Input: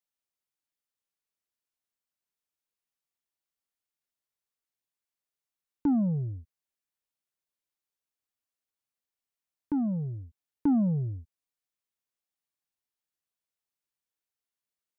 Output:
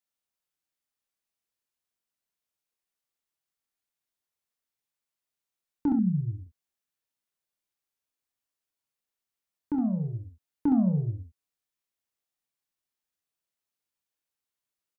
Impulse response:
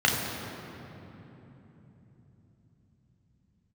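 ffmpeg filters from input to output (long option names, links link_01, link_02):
-filter_complex "[0:a]asettb=1/sr,asplit=3[link_01][link_02][link_03];[link_01]atrim=end=5.924[link_04];[link_02]atrim=start=5.92:end=6.4,asetpts=PTS-STARTPTS,afade=type=in:duration=0.004:curve=qsin,afade=type=out:start_time=0.476:duration=0.004:curve=qsin,asuperstop=centerf=720:order=12:qfactor=0.59[link_05];[link_03]atrim=start=6.396[link_06];[link_04][link_05]acrossfade=duration=0.004:curve1=hsin:curve2=qsin[link_07];[link_07][link_06]acrossfade=duration=0.004:curve1=qsin:curve2=hsin,aecho=1:1:27|44|67:0.376|0.158|0.501"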